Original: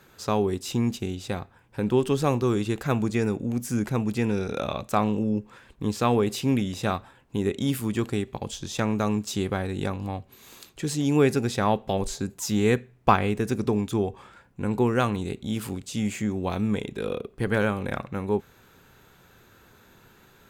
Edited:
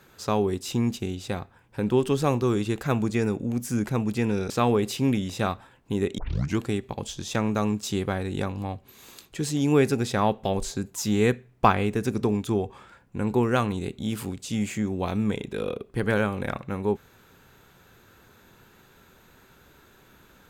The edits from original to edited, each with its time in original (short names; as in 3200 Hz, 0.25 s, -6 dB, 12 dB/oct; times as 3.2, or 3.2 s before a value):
4.5–5.94 cut
7.62 tape start 0.40 s